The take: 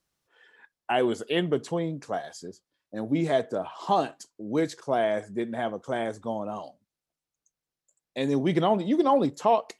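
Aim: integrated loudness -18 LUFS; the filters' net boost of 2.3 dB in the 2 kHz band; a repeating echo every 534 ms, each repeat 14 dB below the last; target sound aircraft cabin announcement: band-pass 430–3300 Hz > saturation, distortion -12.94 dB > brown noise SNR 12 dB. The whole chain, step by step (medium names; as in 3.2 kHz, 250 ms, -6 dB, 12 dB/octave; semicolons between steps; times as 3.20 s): band-pass 430–3300 Hz; peaking EQ 2 kHz +3.5 dB; feedback delay 534 ms, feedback 20%, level -14 dB; saturation -20 dBFS; brown noise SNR 12 dB; trim +13.5 dB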